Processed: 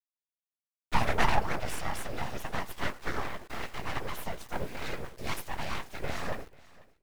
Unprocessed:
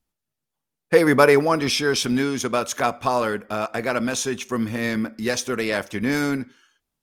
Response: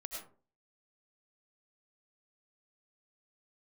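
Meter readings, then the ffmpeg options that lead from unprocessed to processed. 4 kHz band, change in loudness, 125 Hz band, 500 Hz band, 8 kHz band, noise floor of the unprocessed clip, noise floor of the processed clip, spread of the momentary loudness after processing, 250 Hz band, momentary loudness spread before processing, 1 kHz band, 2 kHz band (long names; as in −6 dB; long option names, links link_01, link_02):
−12.5 dB, −13.0 dB, −8.0 dB, −18.0 dB, −16.0 dB, −83 dBFS, below −85 dBFS, 11 LU, −18.5 dB, 10 LU, −8.0 dB, −11.0 dB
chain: -filter_complex "[0:a]highpass=frequency=100:poles=1,agate=range=-33dB:threshold=-46dB:ratio=3:detection=peak,equalizer=frequency=12000:width_type=o:width=0.56:gain=-14,bandreject=frequency=50:width_type=h:width=6,bandreject=frequency=100:width_type=h:width=6,bandreject=frequency=150:width_type=h:width=6,bandreject=frequency=200:width_type=h:width=6,flanger=delay=9.5:depth=9.9:regen=38:speed=0.73:shape=triangular,afftfilt=real='hypot(re,im)*cos(2*PI*random(0))':imag='hypot(re,im)*sin(2*PI*random(1))':win_size=512:overlap=0.75,aeval=exprs='abs(val(0))':channel_layout=same,acrusher=bits=8:mix=0:aa=0.000001,asplit=2[link_01][link_02];[link_02]aecho=0:1:491|982:0.0708|0.0163[link_03];[link_01][link_03]amix=inputs=2:normalize=0,adynamicequalizer=threshold=0.00398:dfrequency=2100:dqfactor=0.7:tfrequency=2100:tqfactor=0.7:attack=5:release=100:ratio=0.375:range=2.5:mode=cutabove:tftype=highshelf,volume=2dB"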